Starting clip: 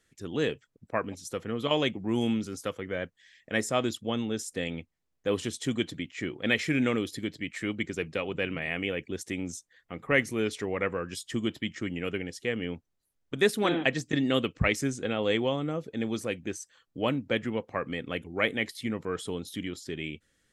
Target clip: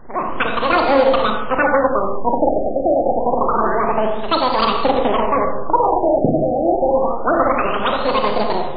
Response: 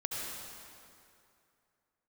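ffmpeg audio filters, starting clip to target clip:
-filter_complex "[0:a]aeval=exprs='val(0)+0.5*0.0211*sgn(val(0))':c=same,acrusher=bits=6:dc=4:mix=0:aa=0.000001,dynaudnorm=f=150:g=7:m=3.16,asplit=2[s0][s1];[1:a]atrim=start_sample=2205,lowshelf=f=500:g=9.5[s2];[s1][s2]afir=irnorm=-1:irlink=0,volume=0.668[s3];[s0][s3]amix=inputs=2:normalize=0,asetrate=103194,aresample=44100,afftfilt=real='re*lt(b*sr/1024,780*pow(4800/780,0.5+0.5*sin(2*PI*0.27*pts/sr)))':imag='im*lt(b*sr/1024,780*pow(4800/780,0.5+0.5*sin(2*PI*0.27*pts/sr)))':win_size=1024:overlap=0.75,volume=0.631"

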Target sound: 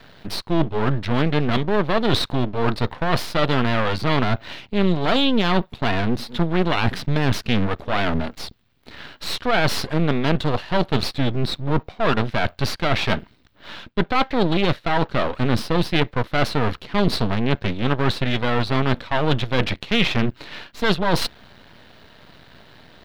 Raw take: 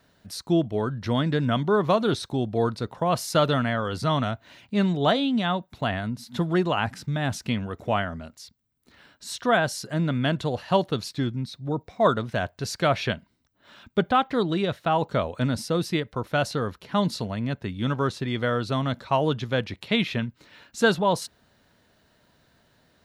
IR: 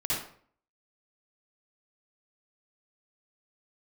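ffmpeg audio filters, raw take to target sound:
-af "apsyclip=3.98,areverse,acompressor=threshold=0.126:ratio=20,areverse,aeval=exprs='max(val(0),0)':c=same,highshelf=f=5200:t=q:w=1.5:g=-9.5,volume=2.11"

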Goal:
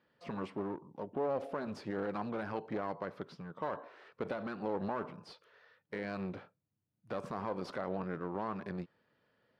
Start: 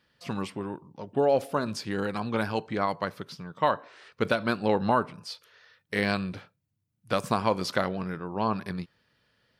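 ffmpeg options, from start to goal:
-af "alimiter=limit=0.075:level=0:latency=1:release=73,aeval=exprs='clip(val(0),-1,0.0112)':c=same,bandpass=f=500:t=q:w=0.55:csg=0"

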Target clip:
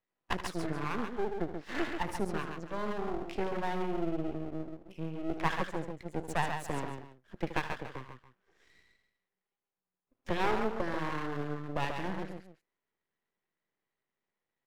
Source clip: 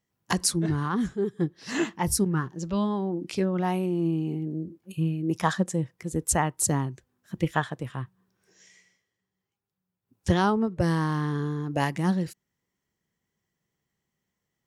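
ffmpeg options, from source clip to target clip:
-filter_complex "[0:a]acrossover=split=270 2900:gain=0.141 1 0.0794[s0][s1][s2];[s0][s1][s2]amix=inputs=3:normalize=0,aecho=1:1:74|76|136|285:0.106|0.237|0.501|0.15,aeval=exprs='max(val(0),0)':c=same"

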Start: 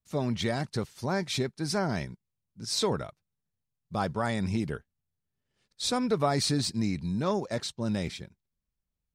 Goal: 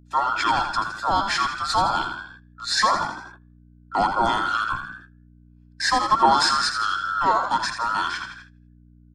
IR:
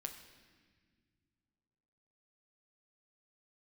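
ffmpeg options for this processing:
-filter_complex "[0:a]afftfilt=real='real(if(between(b,1,1012),(2*floor((b-1)/92)+1)*92-b,b),0)':imag='imag(if(between(b,1,1012),(2*floor((b-1)/92)+1)*92-b,b),0)*if(between(b,1,1012),-1,1)':win_size=2048:overlap=0.75,asplit=7[s0][s1][s2][s3][s4][s5][s6];[s1]adelay=82,afreqshift=57,volume=0.398[s7];[s2]adelay=164,afreqshift=114,volume=0.204[s8];[s3]adelay=246,afreqshift=171,volume=0.104[s9];[s4]adelay=328,afreqshift=228,volume=0.0531[s10];[s5]adelay=410,afreqshift=285,volume=0.0269[s11];[s6]adelay=492,afreqshift=342,volume=0.0138[s12];[s0][s7][s8][s9][s10][s11][s12]amix=inputs=7:normalize=0,afreqshift=-470,agate=range=0.1:threshold=0.00224:ratio=16:detection=peak,bandreject=f=60:t=h:w=6,bandreject=f=120:t=h:w=6,bandreject=f=180:t=h:w=6,bandreject=f=240:t=h:w=6,bandreject=f=300:t=h:w=6,bandreject=f=360:t=h:w=6,bandreject=f=420:t=h:w=6,aeval=exprs='val(0)+0.00178*(sin(2*PI*60*n/s)+sin(2*PI*2*60*n/s)/2+sin(2*PI*3*60*n/s)/3+sin(2*PI*4*60*n/s)/4+sin(2*PI*5*60*n/s)/5)':c=same,lowpass=6500,equalizer=f=340:w=4.3:g=8.5,acrossover=split=280[s13][s14];[s13]acompressor=threshold=0.0251:ratio=6[s15];[s15][s14]amix=inputs=2:normalize=0,equalizer=f=65:w=0.59:g=-7.5,aecho=1:1:1.2:0.55,volume=2.37"

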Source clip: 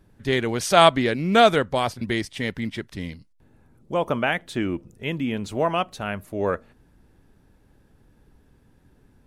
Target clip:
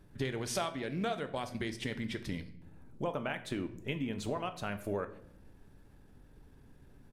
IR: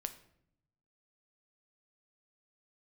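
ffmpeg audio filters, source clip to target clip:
-filter_complex "[0:a]atempo=1.3,acompressor=threshold=0.0282:ratio=8[s0];[1:a]atrim=start_sample=2205[s1];[s0][s1]afir=irnorm=-1:irlink=0"

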